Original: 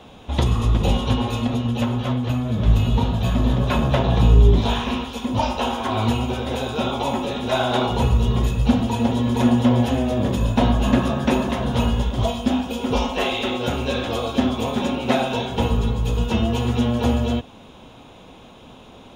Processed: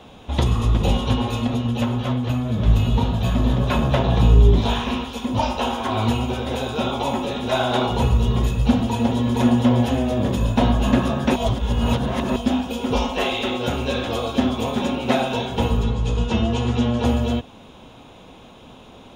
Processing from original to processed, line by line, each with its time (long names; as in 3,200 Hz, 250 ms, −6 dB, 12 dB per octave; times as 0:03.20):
0:11.36–0:12.36: reverse
0:15.83–0:17.05: low-pass filter 8,100 Hz 24 dB per octave